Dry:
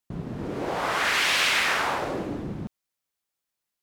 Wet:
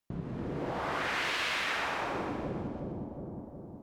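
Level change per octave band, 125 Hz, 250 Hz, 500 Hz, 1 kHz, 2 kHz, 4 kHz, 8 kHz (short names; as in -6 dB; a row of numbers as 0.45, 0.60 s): -2.5, -3.5, -5.0, -6.5, -8.5, -10.5, -14.0 dB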